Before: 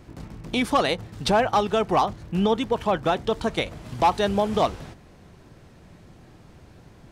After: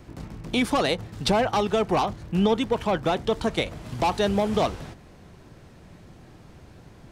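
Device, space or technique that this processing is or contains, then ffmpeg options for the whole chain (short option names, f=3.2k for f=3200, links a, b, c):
one-band saturation: -filter_complex "[0:a]acrossover=split=490|3200[a][b][c];[b]asoftclip=type=tanh:threshold=-22.5dB[d];[a][d][c]amix=inputs=3:normalize=0,volume=1dB"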